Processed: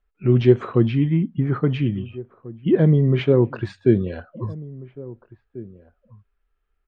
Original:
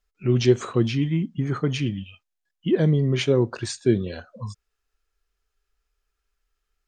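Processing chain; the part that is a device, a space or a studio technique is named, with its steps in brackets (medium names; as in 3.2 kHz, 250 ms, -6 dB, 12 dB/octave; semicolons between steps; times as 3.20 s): shout across a valley (distance through air 490 m; echo from a far wall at 290 m, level -19 dB); trim +4.5 dB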